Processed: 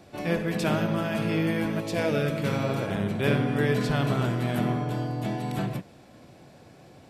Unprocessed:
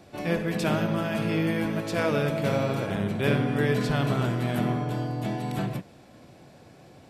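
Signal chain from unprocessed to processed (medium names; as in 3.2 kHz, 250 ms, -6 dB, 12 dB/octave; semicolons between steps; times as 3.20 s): 1.79–2.63 s: peaking EQ 1.7 kHz -> 550 Hz -12 dB 0.36 oct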